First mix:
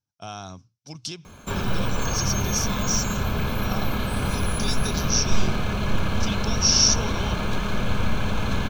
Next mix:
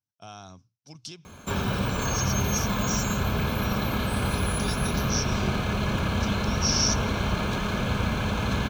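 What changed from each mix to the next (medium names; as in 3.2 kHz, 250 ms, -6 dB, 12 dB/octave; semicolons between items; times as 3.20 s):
speech -7.0 dB; master: add high-pass 48 Hz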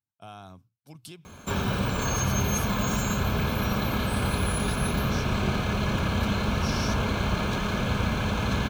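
speech: remove resonant low-pass 5.8 kHz, resonance Q 6.3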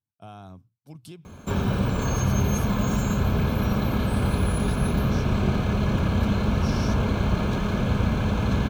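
master: add tilt shelf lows +4.5 dB, about 800 Hz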